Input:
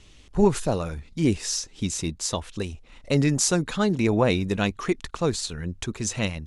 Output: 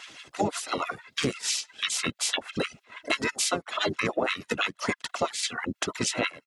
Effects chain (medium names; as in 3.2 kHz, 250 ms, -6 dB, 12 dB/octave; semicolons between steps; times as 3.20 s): spectral peaks clipped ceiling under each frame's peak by 12 dB; comb 1.5 ms, depth 54%; reverb removal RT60 1.3 s; LFO high-pass sine 6.1 Hz 240–3100 Hz; high-pass 76 Hz 12 dB/octave; harmony voices -12 st -6 dB, -4 st -5 dB; compression 6:1, threshold -27 dBFS, peak gain reduction 15 dB; trim +2.5 dB